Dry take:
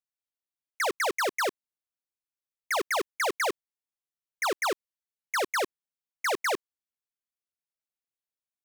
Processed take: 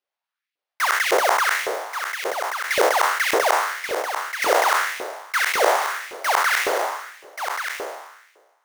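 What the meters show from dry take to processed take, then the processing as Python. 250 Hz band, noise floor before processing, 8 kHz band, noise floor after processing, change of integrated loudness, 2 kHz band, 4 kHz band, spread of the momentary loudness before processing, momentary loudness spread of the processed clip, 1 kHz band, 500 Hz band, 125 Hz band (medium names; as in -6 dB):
+4.0 dB, under -85 dBFS, +9.5 dB, under -85 dBFS, +8.0 dB, +11.0 dB, +9.0 dB, 5 LU, 10 LU, +11.5 dB, +9.5 dB, no reading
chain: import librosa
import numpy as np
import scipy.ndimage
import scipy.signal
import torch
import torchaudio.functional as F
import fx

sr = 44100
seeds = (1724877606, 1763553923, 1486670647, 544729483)

y = fx.spec_trails(x, sr, decay_s=1.28)
y = fx.sample_hold(y, sr, seeds[0], rate_hz=7700.0, jitter_pct=20)
y = fx.filter_lfo_highpass(y, sr, shape='saw_up', hz=1.8, low_hz=410.0, high_hz=2500.0, q=2.3)
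y = y + 10.0 ** (-7.5 / 20.0) * np.pad(y, (int(1132 * sr / 1000.0), 0))[:len(y)]
y = F.gain(torch.from_numpy(y), 1.0).numpy()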